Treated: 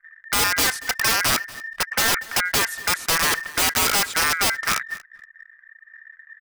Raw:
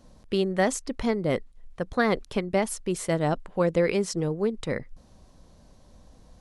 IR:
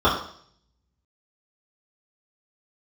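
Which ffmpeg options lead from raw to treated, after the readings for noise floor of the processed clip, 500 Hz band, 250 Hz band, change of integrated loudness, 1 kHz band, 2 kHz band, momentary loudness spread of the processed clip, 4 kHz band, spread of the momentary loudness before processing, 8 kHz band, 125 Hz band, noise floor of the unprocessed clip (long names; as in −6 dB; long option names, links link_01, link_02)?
−55 dBFS, −8.0 dB, −8.0 dB, +7.0 dB, +7.5 dB, +13.0 dB, 6 LU, +17.5 dB, 8 LU, +15.5 dB, −6.0 dB, −55 dBFS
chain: -filter_complex "[0:a]aeval=exprs='val(0)*sin(2*PI*1800*n/s)':channel_layout=same,equalizer=frequency=1400:width_type=o:width=1.6:gain=11.5,aeval=exprs='(mod(5.62*val(0)+1,2)-1)/5.62':channel_layout=same,asplit=2[link_01][link_02];[link_02]aecho=0:1:237|474|711:0.0944|0.0359|0.0136[link_03];[link_01][link_03]amix=inputs=2:normalize=0,anlmdn=0.158,volume=1.5dB"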